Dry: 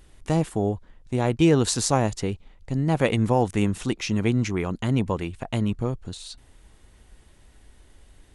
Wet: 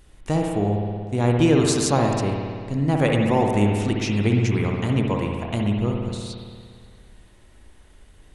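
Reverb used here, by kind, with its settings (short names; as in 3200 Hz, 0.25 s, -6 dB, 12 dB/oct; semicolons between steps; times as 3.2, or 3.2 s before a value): spring tank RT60 2 s, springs 58 ms, chirp 50 ms, DRR 0.5 dB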